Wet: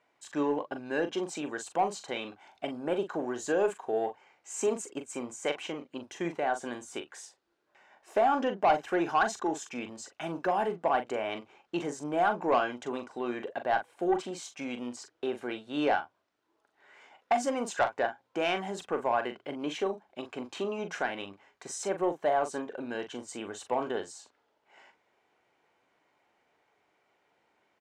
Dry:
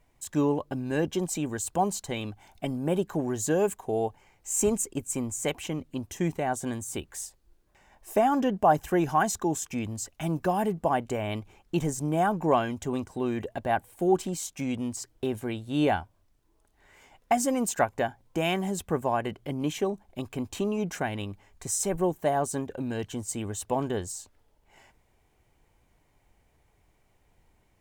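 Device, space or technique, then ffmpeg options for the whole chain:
intercom: -filter_complex "[0:a]highpass=370,lowpass=4.4k,equalizer=f=1.4k:t=o:w=0.35:g=5,asoftclip=type=tanh:threshold=-17dB,asplit=2[a][b];[b]adelay=41,volume=-9dB[c];[a][c]amix=inputs=2:normalize=0"

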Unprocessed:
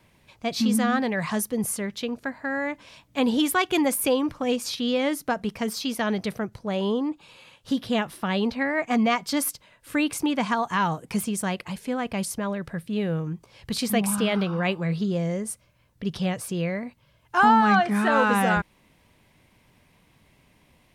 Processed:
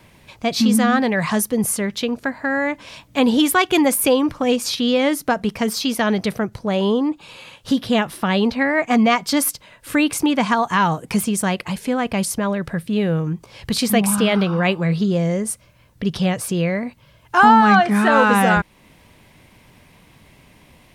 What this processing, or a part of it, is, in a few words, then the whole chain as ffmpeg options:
parallel compression: -filter_complex "[0:a]asplit=2[a][b];[b]acompressor=threshold=-36dB:ratio=6,volume=-3dB[c];[a][c]amix=inputs=2:normalize=0,volume=5.5dB"

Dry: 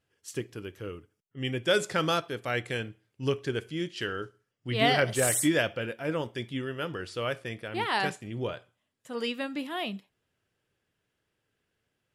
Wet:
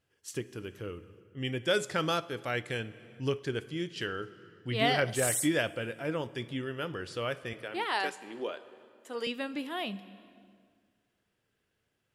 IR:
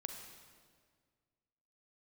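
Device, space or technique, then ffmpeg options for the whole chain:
compressed reverb return: -filter_complex "[0:a]asettb=1/sr,asplit=3[a][b][c];[a]atrim=end=7.534[d];[b]atrim=start=7.53:end=9.27,asetpts=PTS-STARTPTS,afade=t=in:d=0.004:c=qsin,afade=t=out:st=1.736:d=0.004:c=qsin,highpass=f=280:w=0.5412,highpass=f=280:w=1.3066[e];[c]atrim=start=9.266[f];[d][e]acrossfade=d=0.004:c1=hsin:c2=qsin[g];[g][f]acrossfade=d=0.004:c1=qsin:c2=hsin,asplit=2[h][i];[1:a]atrim=start_sample=2205[j];[i][j]afir=irnorm=-1:irlink=0,acompressor=threshold=-41dB:ratio=4,volume=-1.5dB[k];[h][k]amix=inputs=2:normalize=0,volume=-4dB"

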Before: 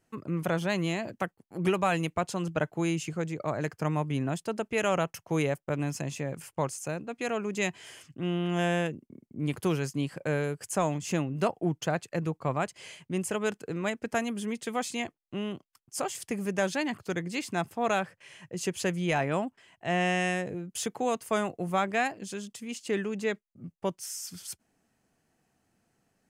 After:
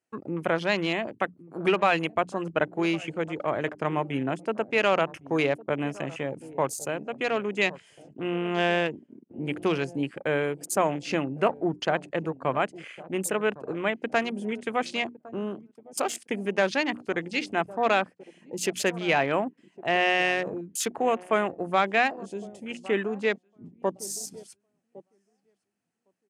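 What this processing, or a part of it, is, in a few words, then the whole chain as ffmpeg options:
over-cleaned archive recording: -filter_complex "[0:a]equalizer=f=160:t=o:w=0.67:g=-7,equalizer=f=2.5k:t=o:w=0.67:g=3,equalizer=f=10k:t=o:w=0.67:g=10,asettb=1/sr,asplit=3[a][b][c];[a]atrim=end=13.314[d];[b]atrim=start=13.31:end=14.12,asetpts=PTS-STARTPTS,afade=t=in:d=0.004:c=qsin,afade=t=out:st=0.806:d=0.004:c=qsin,acrossover=split=4000[e][f];[f]acompressor=threshold=-52dB:ratio=4:attack=1:release=60[g];[e][g]amix=inputs=2:normalize=0[h];[c]atrim=start=14.116[i];[d][h]acrossfade=d=0.004:c1=hsin:c2=qsin[j];[j][i]acrossfade=d=0.004:c1=qsin:c2=hsin,highpass=140,lowpass=7.1k,bandreject=f=60:t=h:w=6,bandreject=f=120:t=h:w=6,bandreject=f=180:t=h:w=6,bandreject=f=240:t=h:w=6,bandreject=f=300:t=h:w=6,asplit=2[k][l];[l]adelay=1108,lowpass=f=950:p=1,volume=-17dB,asplit=2[m][n];[n]adelay=1108,lowpass=f=950:p=1,volume=0.4,asplit=2[o][p];[p]adelay=1108,lowpass=f=950:p=1,volume=0.4[q];[k][m][o][q]amix=inputs=4:normalize=0,afwtdn=0.00794,volume=4.5dB"

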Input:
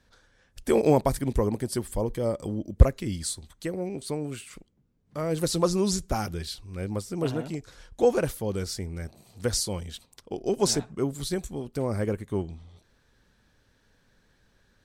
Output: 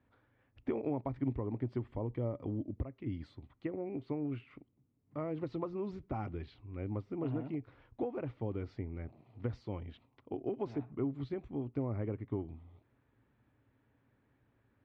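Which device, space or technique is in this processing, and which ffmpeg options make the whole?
bass amplifier: -af "acompressor=threshold=-27dB:ratio=6,highpass=77,equalizer=f=120:t=q:w=4:g=8,equalizer=f=180:t=q:w=4:g=-8,equalizer=f=280:t=q:w=4:g=7,equalizer=f=500:t=q:w=4:g=-4,equalizer=f=1.6k:t=q:w=4:g=-9,lowpass=f=2.3k:w=0.5412,lowpass=f=2.3k:w=1.3066,volume=-5.5dB"

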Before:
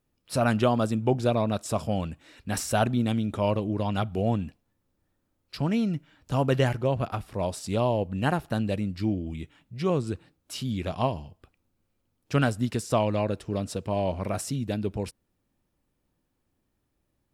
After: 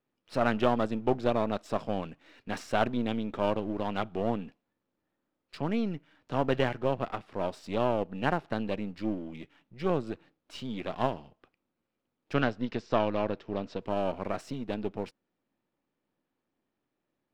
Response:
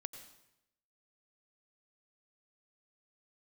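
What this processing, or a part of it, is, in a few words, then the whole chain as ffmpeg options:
crystal radio: -filter_complex "[0:a]highpass=210,lowpass=3.4k,aeval=exprs='if(lt(val(0),0),0.447*val(0),val(0))':c=same,asettb=1/sr,asplit=3[a][b][c];[a]atrim=end=12.344[d];[b]atrim=start=12.34:end=13.82,asetpts=PTS-STARTPTS,afade=t=in:d=0.004:c=qsin,afade=t=out:st=1.476:d=0.004:c=qsin,lowpass=f=5.8k:w=0.5412,lowpass=f=5.8k:w=1.3066[e];[c]atrim=start=13.816[f];[d][e]acrossfade=d=0.004:c1=hsin:c2=qsin[g];[g][f]acrossfade=d=0.004:c1=qsin:c2=hsin"

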